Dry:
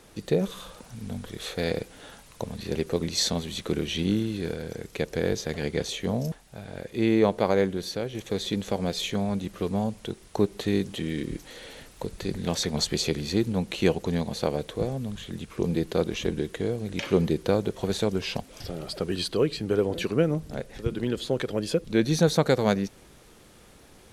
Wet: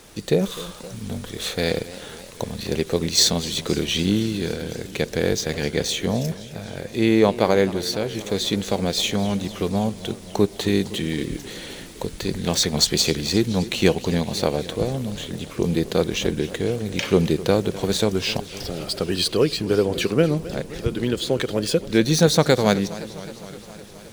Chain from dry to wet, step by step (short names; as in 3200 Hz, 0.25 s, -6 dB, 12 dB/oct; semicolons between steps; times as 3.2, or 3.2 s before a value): median filter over 3 samples; high shelf 3400 Hz +7.5 dB; warbling echo 0.259 s, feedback 71%, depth 159 cents, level -17 dB; gain +4.5 dB